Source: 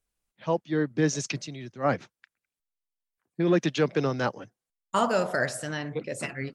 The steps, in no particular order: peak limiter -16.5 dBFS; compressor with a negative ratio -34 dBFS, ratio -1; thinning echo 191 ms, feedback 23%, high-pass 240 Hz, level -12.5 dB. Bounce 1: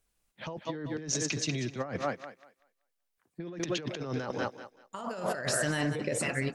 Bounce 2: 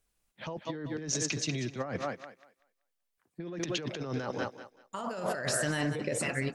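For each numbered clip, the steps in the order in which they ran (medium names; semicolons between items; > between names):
thinning echo > compressor with a negative ratio > peak limiter; peak limiter > thinning echo > compressor with a negative ratio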